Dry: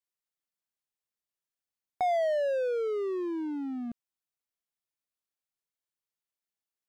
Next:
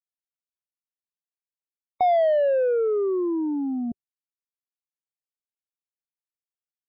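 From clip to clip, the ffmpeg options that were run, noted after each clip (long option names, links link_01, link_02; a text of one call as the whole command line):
ffmpeg -i in.wav -af "equalizer=frequency=2000:width_type=o:width=1:gain=-5.5,afftdn=noise_reduction=30:noise_floor=-42,volume=8dB" out.wav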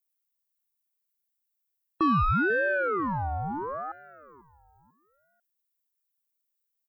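ffmpeg -i in.wav -filter_complex "[0:a]aemphasis=mode=production:type=bsi,asplit=4[link_01][link_02][link_03][link_04];[link_02]adelay=493,afreqshift=47,volume=-19dB[link_05];[link_03]adelay=986,afreqshift=94,volume=-28.1dB[link_06];[link_04]adelay=1479,afreqshift=141,volume=-37.2dB[link_07];[link_01][link_05][link_06][link_07]amix=inputs=4:normalize=0,aeval=exprs='val(0)*sin(2*PI*740*n/s+740*0.45/0.75*sin(2*PI*0.75*n/s))':channel_layout=same" out.wav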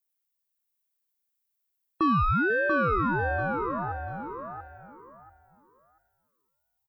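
ffmpeg -i in.wav -af "aecho=1:1:688|1376|2064:0.562|0.129|0.0297" out.wav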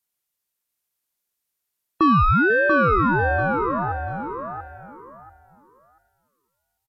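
ffmpeg -i in.wav -af "aresample=32000,aresample=44100,volume=7dB" out.wav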